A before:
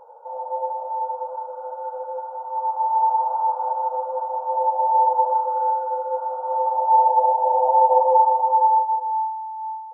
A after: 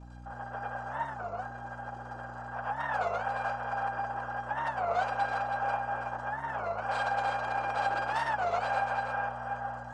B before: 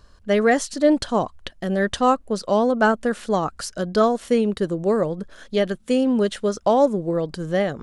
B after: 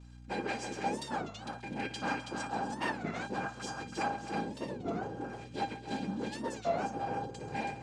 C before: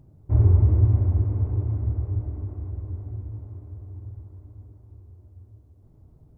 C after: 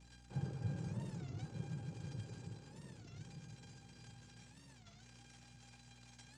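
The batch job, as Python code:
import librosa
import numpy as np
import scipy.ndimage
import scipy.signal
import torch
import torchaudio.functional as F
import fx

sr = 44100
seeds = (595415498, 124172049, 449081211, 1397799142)

p1 = fx.self_delay(x, sr, depth_ms=0.17)
p2 = fx.highpass(p1, sr, hz=150.0, slope=6)
p3 = fx.peak_eq(p2, sr, hz=540.0, db=-13.0, octaves=0.23)
p4 = fx.rider(p3, sr, range_db=4, speed_s=0.5)
p5 = p3 + (p4 * librosa.db_to_amplitude(-2.0))
p6 = fx.dmg_crackle(p5, sr, seeds[0], per_s=210.0, level_db=-26.0)
p7 = np.clip(p6, -10.0 ** (-11.0 / 20.0), 10.0 ** (-11.0 / 20.0))
p8 = fx.noise_vocoder(p7, sr, seeds[1], bands=8)
p9 = fx.comb_fb(p8, sr, f0_hz=800.0, decay_s=0.16, harmonics='all', damping=0.0, mix_pct=90)
p10 = fx.add_hum(p9, sr, base_hz=60, snr_db=13)
p11 = p10 + fx.echo_multitap(p10, sr, ms=(58, 134, 255, 325), db=(-13.5, -14.5, -14.0, -5.5), dry=0)
p12 = fx.record_warp(p11, sr, rpm=33.33, depth_cents=250.0)
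y = p12 * librosa.db_to_amplitude(-3.0)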